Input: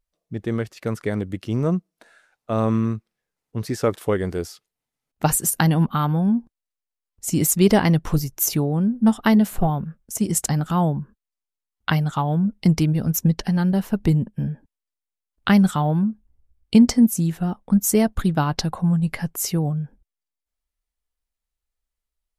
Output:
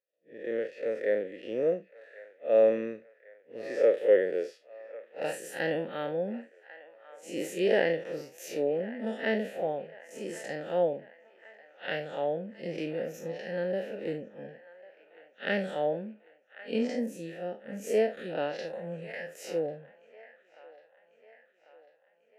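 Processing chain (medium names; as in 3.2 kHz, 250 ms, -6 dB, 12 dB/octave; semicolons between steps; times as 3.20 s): spectral blur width 102 ms; high-pass 270 Hz 12 dB/octave; level rider gain up to 4 dB; vowel filter e; on a send: feedback echo behind a band-pass 1095 ms, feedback 55%, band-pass 1.3 kHz, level -15 dB; on the sum: trim +7 dB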